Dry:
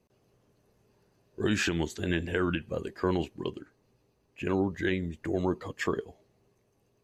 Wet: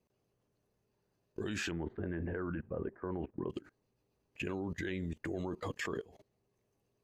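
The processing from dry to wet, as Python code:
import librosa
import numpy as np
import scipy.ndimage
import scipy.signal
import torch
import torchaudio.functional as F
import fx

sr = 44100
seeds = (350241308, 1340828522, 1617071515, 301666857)

y = fx.lowpass(x, sr, hz=1600.0, slope=24, at=(1.71, 3.5))
y = fx.level_steps(y, sr, step_db=21)
y = y * 10.0 ** (4.5 / 20.0)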